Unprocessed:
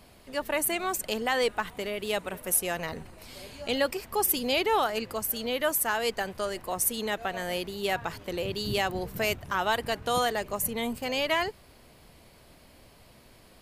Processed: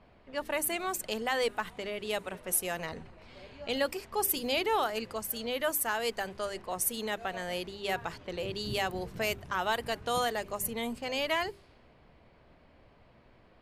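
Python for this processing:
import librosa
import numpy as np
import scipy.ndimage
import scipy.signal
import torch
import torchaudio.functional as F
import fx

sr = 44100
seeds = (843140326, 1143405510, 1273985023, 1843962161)

y = fx.hum_notches(x, sr, base_hz=50, count=8)
y = fx.env_lowpass(y, sr, base_hz=2000.0, full_db=-26.0)
y = y * 10.0 ** (-3.5 / 20.0)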